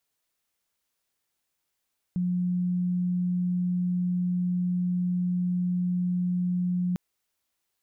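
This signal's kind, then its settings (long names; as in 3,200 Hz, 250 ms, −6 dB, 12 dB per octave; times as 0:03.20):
tone sine 179 Hz −23.5 dBFS 4.80 s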